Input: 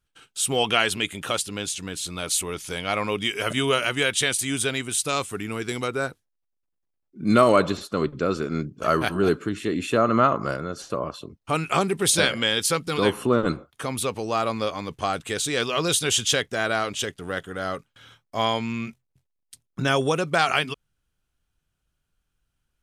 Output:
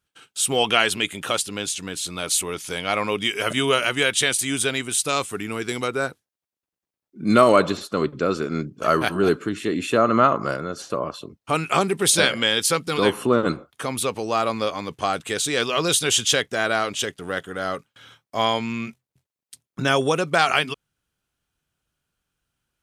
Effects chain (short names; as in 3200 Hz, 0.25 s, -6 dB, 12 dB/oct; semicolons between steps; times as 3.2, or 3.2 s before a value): HPF 140 Hz 6 dB/oct; gain +2.5 dB